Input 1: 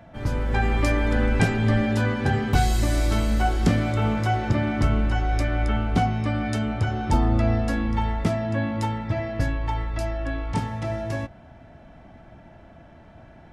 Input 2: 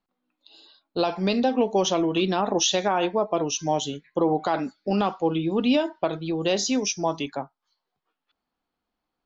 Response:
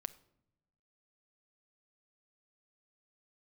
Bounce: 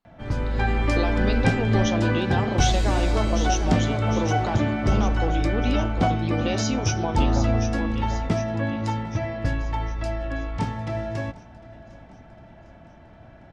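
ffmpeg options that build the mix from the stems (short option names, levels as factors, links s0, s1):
-filter_complex "[0:a]lowpass=6500,adelay=50,volume=0.944,asplit=2[s0][s1];[s1]volume=0.0841[s2];[1:a]acompressor=threshold=0.0447:ratio=2.5,volume=1,asplit=2[s3][s4];[s4]volume=0.376[s5];[s2][s5]amix=inputs=2:normalize=0,aecho=0:1:754|1508|2262|3016|3770|4524|5278|6032:1|0.54|0.292|0.157|0.085|0.0459|0.0248|0.0134[s6];[s0][s3][s6]amix=inputs=3:normalize=0"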